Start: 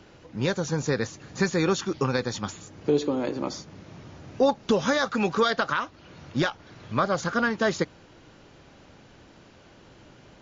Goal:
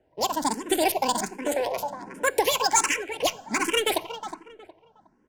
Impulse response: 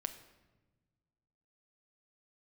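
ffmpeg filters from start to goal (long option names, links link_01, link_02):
-filter_complex "[0:a]agate=range=-13dB:threshold=-44dB:ratio=16:detection=peak,aexciter=amount=3.8:drive=6:freq=2700,asetrate=86877,aresample=44100,adynamicsmooth=sensitivity=6:basefreq=1300,asuperstop=centerf=1200:order=8:qfactor=6.4,asplit=2[link_01][link_02];[link_02]adelay=364,lowpass=frequency=2300:poles=1,volume=-9.5dB,asplit=2[link_03][link_04];[link_04]adelay=364,lowpass=frequency=2300:poles=1,volume=0.29,asplit=2[link_05][link_06];[link_06]adelay=364,lowpass=frequency=2300:poles=1,volume=0.29[link_07];[link_01][link_03][link_05][link_07]amix=inputs=4:normalize=0,asplit=2[link_08][link_09];[1:a]atrim=start_sample=2205[link_10];[link_09][link_10]afir=irnorm=-1:irlink=0,volume=-5dB[link_11];[link_08][link_11]amix=inputs=2:normalize=0,asplit=2[link_12][link_13];[link_13]afreqshift=1.3[link_14];[link_12][link_14]amix=inputs=2:normalize=1"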